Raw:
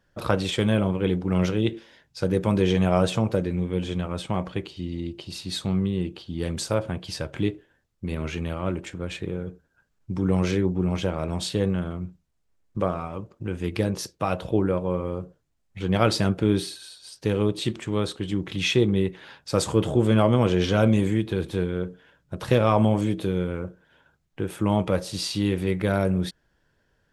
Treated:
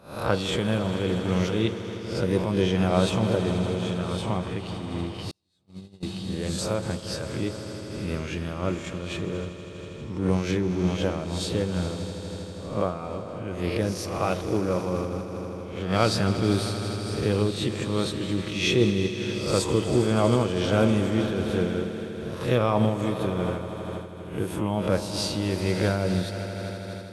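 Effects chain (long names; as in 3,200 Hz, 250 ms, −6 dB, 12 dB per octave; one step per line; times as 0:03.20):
peak hold with a rise ahead of every peak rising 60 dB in 0.52 s
echo that builds up and dies away 80 ms, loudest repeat 5, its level −15 dB
0:05.31–0:06.03: noise gate −19 dBFS, range −43 dB
amplitude modulation by smooth noise, depth 65%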